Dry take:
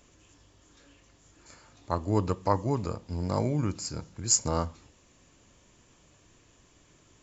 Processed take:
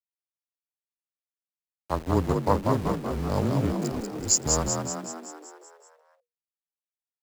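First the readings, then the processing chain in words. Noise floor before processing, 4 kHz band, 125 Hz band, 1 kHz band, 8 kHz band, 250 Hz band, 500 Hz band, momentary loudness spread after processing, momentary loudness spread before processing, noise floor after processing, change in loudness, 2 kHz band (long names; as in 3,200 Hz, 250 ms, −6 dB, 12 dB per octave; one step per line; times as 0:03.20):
−62 dBFS, +3.0 dB, +2.5 dB, +3.0 dB, can't be measured, +4.5 dB, +4.0 dB, 12 LU, 12 LU, below −85 dBFS, +3.0 dB, +6.5 dB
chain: adaptive Wiener filter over 41 samples
centre clipping without the shift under −36 dBFS
frequency shifter −17 Hz
on a send: echo with shifted repeats 190 ms, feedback 58%, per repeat +59 Hz, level −4 dB
on the sum: level +2 dB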